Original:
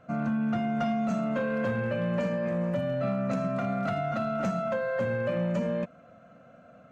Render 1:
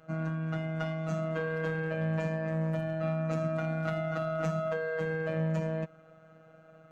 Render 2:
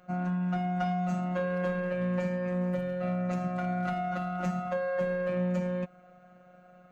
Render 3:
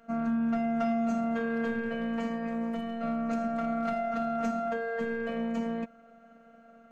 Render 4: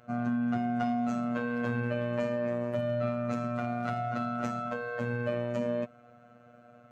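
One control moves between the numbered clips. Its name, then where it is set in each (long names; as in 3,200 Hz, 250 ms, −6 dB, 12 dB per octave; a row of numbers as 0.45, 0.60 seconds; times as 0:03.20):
phases set to zero, frequency: 160, 180, 230, 120 Hertz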